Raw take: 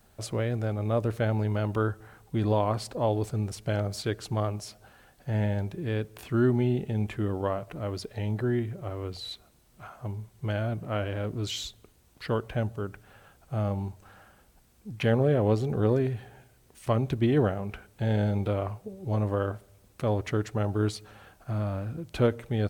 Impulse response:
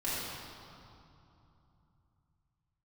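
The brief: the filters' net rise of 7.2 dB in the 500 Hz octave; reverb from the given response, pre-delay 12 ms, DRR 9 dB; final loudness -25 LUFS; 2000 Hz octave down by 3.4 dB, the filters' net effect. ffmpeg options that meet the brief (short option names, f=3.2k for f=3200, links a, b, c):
-filter_complex "[0:a]equalizer=f=500:t=o:g=9,equalizer=f=2k:t=o:g=-5.5,asplit=2[a][b];[1:a]atrim=start_sample=2205,adelay=12[c];[b][c]afir=irnorm=-1:irlink=0,volume=-16dB[d];[a][d]amix=inputs=2:normalize=0"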